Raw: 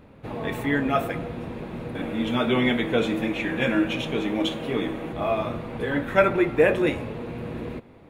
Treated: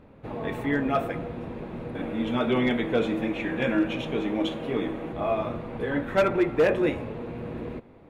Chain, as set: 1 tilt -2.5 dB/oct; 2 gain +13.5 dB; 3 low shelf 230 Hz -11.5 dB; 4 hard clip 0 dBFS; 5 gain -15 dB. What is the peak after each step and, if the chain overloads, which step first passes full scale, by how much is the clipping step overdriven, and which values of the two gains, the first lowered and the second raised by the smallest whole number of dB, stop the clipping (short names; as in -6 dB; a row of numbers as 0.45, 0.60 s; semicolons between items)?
-4.0, +9.5, +7.0, 0.0, -15.0 dBFS; step 2, 7.0 dB; step 2 +6.5 dB, step 5 -8 dB